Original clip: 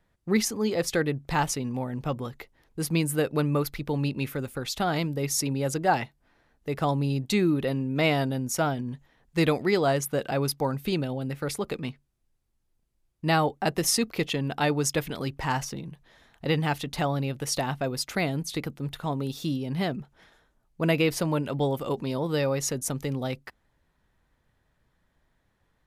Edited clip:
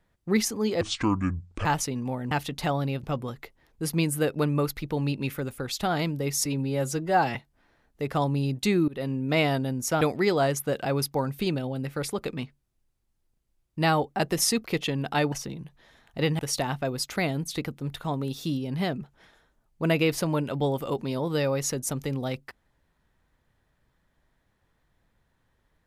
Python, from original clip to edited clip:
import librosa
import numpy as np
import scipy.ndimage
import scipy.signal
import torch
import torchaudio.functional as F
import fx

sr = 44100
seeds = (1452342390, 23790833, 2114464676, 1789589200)

y = fx.edit(x, sr, fx.speed_span(start_s=0.81, length_s=0.53, speed=0.63),
    fx.stretch_span(start_s=5.42, length_s=0.6, factor=1.5),
    fx.fade_in_from(start_s=7.55, length_s=0.32, curve='qsin', floor_db=-24.0),
    fx.cut(start_s=8.68, length_s=0.79),
    fx.cut(start_s=14.78, length_s=0.81),
    fx.move(start_s=16.66, length_s=0.72, to_s=2.0), tone=tone)